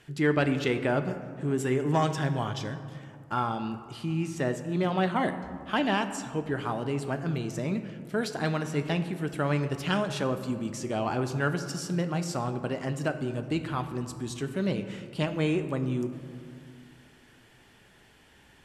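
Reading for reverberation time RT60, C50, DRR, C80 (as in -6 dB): 2.1 s, 10.5 dB, 8.0 dB, 11.5 dB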